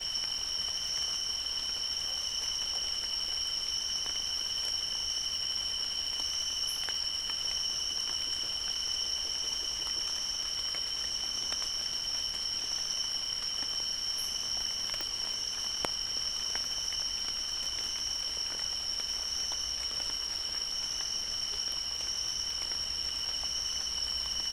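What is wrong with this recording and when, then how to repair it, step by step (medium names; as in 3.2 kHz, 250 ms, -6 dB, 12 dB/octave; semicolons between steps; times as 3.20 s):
crackle 32 per s -39 dBFS
15.01 s: pop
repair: de-click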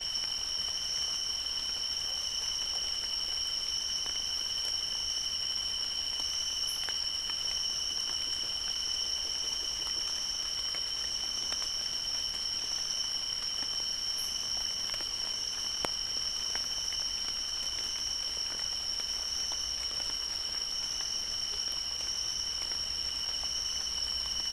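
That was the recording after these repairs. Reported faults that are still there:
15.01 s: pop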